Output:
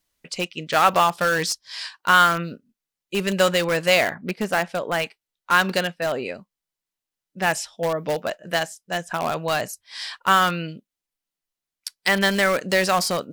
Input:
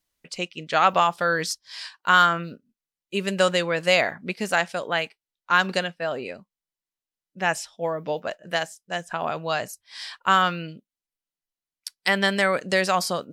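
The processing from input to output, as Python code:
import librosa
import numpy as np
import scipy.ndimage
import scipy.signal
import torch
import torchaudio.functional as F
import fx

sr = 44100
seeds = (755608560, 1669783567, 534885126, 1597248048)

p1 = fx.peak_eq(x, sr, hz=9400.0, db=-11.0, octaves=2.9, at=(4.14, 5.0))
p2 = (np.mod(10.0 ** (20.0 / 20.0) * p1 + 1.0, 2.0) - 1.0) / 10.0 ** (20.0 / 20.0)
p3 = p1 + F.gain(torch.from_numpy(p2), -9.5).numpy()
y = F.gain(torch.from_numpy(p3), 1.5).numpy()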